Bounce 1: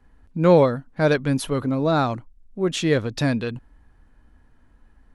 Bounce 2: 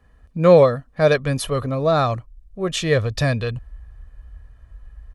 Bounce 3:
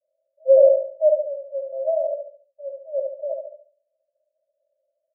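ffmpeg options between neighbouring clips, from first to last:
-af "highpass=41,aecho=1:1:1.7:0.51,asubboost=boost=7.5:cutoff=76,volume=2dB"
-filter_complex "[0:a]asuperpass=centerf=600:order=20:qfactor=3.9,asplit=2[a][b];[b]aecho=0:1:71|142|213|284|355:0.631|0.24|0.0911|0.0346|0.0132[c];[a][c]amix=inputs=2:normalize=0,afftfilt=real='re*eq(mod(floor(b*sr/1024/670),2),0)':imag='im*eq(mod(floor(b*sr/1024/670),2),0)':win_size=1024:overlap=0.75"

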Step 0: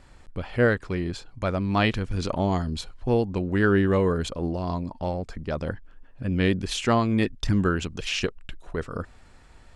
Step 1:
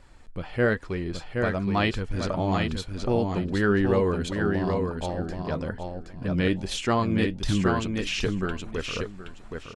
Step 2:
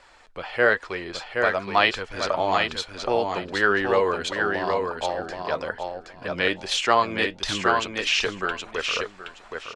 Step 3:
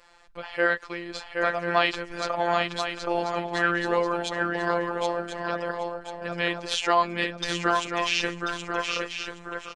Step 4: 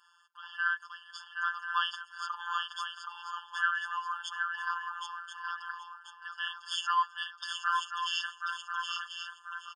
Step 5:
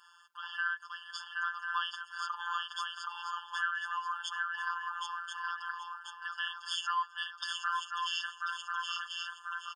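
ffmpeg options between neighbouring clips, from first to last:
-filter_complex "[0:a]flanger=delay=1.8:depth=5.1:regen=68:speed=1:shape=triangular,asplit=2[a][b];[b]aecho=0:1:772|1544|2316:0.596|0.113|0.0215[c];[a][c]amix=inputs=2:normalize=0,volume=2.5dB"
-filter_complex "[0:a]acrossover=split=480 7200:gain=0.0891 1 0.251[a][b][c];[a][b][c]amix=inputs=3:normalize=0,volume=8dB"
-filter_complex "[0:a]afftfilt=real='hypot(re,im)*cos(PI*b)':imag='0':win_size=1024:overlap=0.75,asplit=2[a][b];[b]aecho=0:1:1039:0.376[c];[a][c]amix=inputs=2:normalize=0"
-af "highpass=f=190:w=0.5412,highpass=f=190:w=1.3066,afftfilt=real='re*eq(mod(floor(b*sr/1024/900),2),1)':imag='im*eq(mod(floor(b*sr/1024/900),2),1)':win_size=1024:overlap=0.75,volume=-4dB"
-af "acompressor=threshold=-41dB:ratio=2,volume=4.5dB"

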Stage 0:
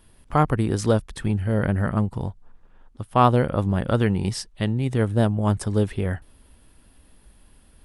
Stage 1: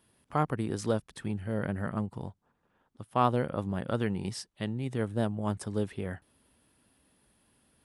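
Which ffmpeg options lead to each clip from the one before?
-af "highpass=120,volume=-8.5dB"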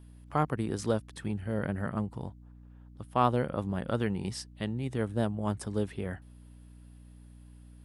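-af "aeval=exprs='val(0)+0.00316*(sin(2*PI*60*n/s)+sin(2*PI*2*60*n/s)/2+sin(2*PI*3*60*n/s)/3+sin(2*PI*4*60*n/s)/4+sin(2*PI*5*60*n/s)/5)':c=same"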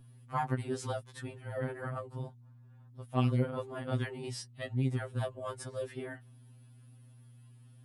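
-af "afftfilt=real='re*2.45*eq(mod(b,6),0)':imag='im*2.45*eq(mod(b,6),0)':win_size=2048:overlap=0.75"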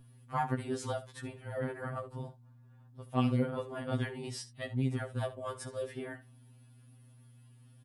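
-af "aecho=1:1:12|69:0.251|0.178"

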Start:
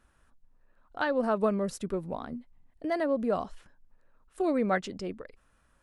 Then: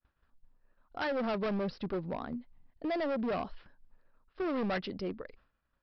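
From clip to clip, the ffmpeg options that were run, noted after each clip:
-af "agate=range=-33dB:threshold=-56dB:ratio=3:detection=peak,aresample=11025,asoftclip=type=hard:threshold=-30dB,aresample=44100"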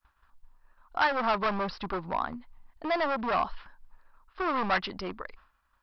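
-af "equalizer=f=125:t=o:w=1:g=-10,equalizer=f=250:t=o:w=1:g=-6,equalizer=f=500:t=o:w=1:g=-9,equalizer=f=1k:t=o:w=1:g=9,volume=7.5dB"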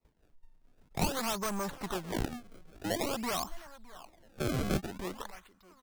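-filter_complex "[0:a]aecho=1:1:613|1226:0.0794|0.0254,acrusher=samples=27:mix=1:aa=0.000001:lfo=1:lforange=43.2:lforate=0.49,acrossover=split=430|3000[a][b][c];[b]acompressor=threshold=-32dB:ratio=6[d];[a][d][c]amix=inputs=3:normalize=0,volume=-2.5dB"

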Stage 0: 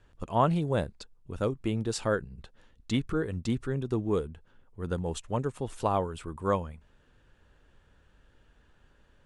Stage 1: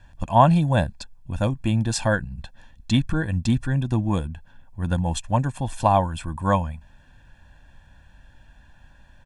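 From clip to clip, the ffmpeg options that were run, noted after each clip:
-af "aecho=1:1:1.2:0.94,volume=6dB"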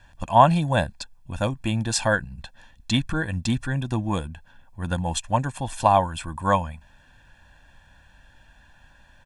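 -af "lowshelf=f=450:g=-7.5,volume=3dB"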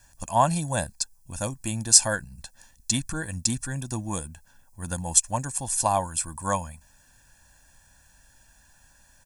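-af "aexciter=amount=10.9:drive=1.9:freq=4.9k,volume=-6dB"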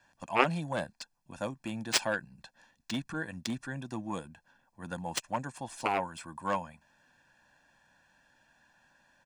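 -filter_complex "[0:a]aeval=exprs='0.891*(cos(1*acos(clip(val(0)/0.891,-1,1)))-cos(1*PI/2))+0.2*(cos(3*acos(clip(val(0)/0.891,-1,1)))-cos(3*PI/2))+0.1*(cos(7*acos(clip(val(0)/0.891,-1,1)))-cos(7*PI/2))':c=same,acrossover=split=150 4000:gain=0.0794 1 0.0794[a][b][c];[a][b][c]amix=inputs=3:normalize=0,volume=4.5dB"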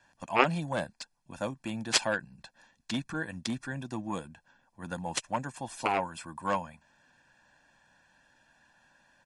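-af "volume=2dB" -ar 48000 -c:a libmp3lame -b:a 48k

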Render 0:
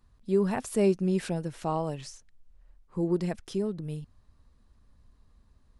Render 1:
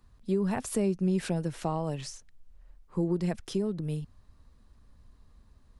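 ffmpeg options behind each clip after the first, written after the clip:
-filter_complex "[0:a]acrossover=split=170[a][b];[b]acompressor=threshold=-30dB:ratio=10[c];[a][c]amix=inputs=2:normalize=0,volume=3dB"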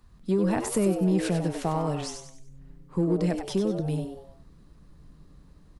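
-filter_complex "[0:a]asplit=2[a][b];[b]volume=23.5dB,asoftclip=hard,volume=-23.5dB,volume=-5.5dB[c];[a][c]amix=inputs=2:normalize=0,asplit=5[d][e][f][g][h];[e]adelay=96,afreqshift=130,volume=-8dB[i];[f]adelay=192,afreqshift=260,volume=-16.2dB[j];[g]adelay=288,afreqshift=390,volume=-24.4dB[k];[h]adelay=384,afreqshift=520,volume=-32.5dB[l];[d][i][j][k][l]amix=inputs=5:normalize=0"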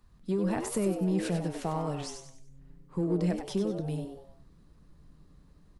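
-af "flanger=delay=4.8:depth=7.1:regen=83:speed=1.4:shape=sinusoidal"

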